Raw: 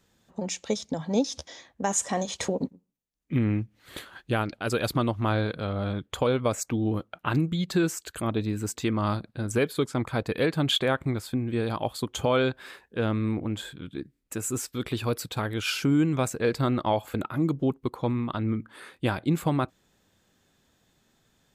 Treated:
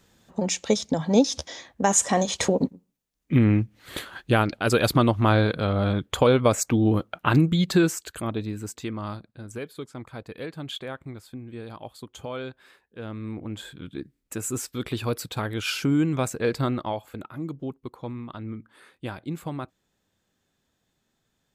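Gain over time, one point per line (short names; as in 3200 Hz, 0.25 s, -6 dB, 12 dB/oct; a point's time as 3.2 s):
7.68 s +6 dB
8.21 s -0.5 dB
9.62 s -10.5 dB
12.99 s -10.5 dB
13.83 s +0.5 dB
16.63 s +0.5 dB
17.08 s -7.5 dB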